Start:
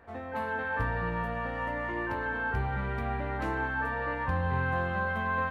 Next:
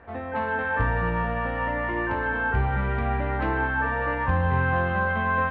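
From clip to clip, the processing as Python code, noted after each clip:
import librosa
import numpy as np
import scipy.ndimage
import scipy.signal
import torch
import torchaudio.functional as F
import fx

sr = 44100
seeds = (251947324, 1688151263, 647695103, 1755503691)

y = scipy.signal.sosfilt(scipy.signal.butter(4, 3500.0, 'lowpass', fs=sr, output='sos'), x)
y = fx.peak_eq(y, sr, hz=60.0, db=2.5, octaves=0.77)
y = F.gain(torch.from_numpy(y), 6.0).numpy()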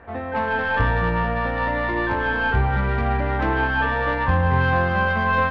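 y = fx.tracing_dist(x, sr, depth_ms=0.048)
y = F.gain(torch.from_numpy(y), 4.0).numpy()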